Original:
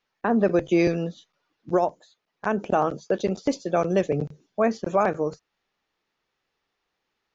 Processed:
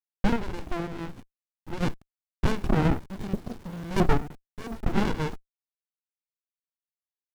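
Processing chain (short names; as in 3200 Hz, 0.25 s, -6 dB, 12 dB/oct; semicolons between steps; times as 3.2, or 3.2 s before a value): 3.06–3.88 spectral repair 240–3400 Hz before; sample leveller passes 5; 4.17–4.85 overloaded stage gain 25.5 dB; LFO band-pass saw up 1.5 Hz 330–3000 Hz; bit-crush 9-bit; 0.36–1.81 tube stage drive 16 dB, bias 0.5; running maximum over 65 samples; gain +4 dB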